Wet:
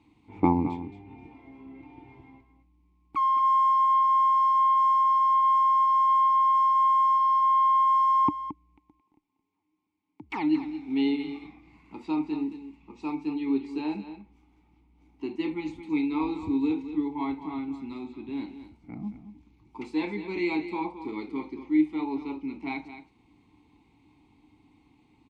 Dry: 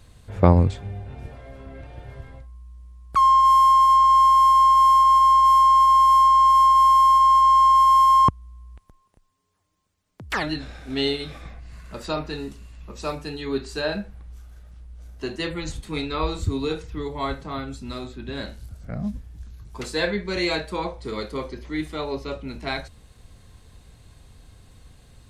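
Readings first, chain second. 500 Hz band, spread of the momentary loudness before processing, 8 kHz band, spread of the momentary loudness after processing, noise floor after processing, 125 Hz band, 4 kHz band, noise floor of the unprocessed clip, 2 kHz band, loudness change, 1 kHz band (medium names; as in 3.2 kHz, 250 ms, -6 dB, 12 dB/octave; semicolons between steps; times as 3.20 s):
-8.5 dB, 19 LU, under -20 dB, 17 LU, -69 dBFS, -14.5 dB, -15.0 dB, -57 dBFS, -8.0 dB, -7.0 dB, -6.5 dB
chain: vowel filter u; delay 221 ms -11.5 dB; trim +8 dB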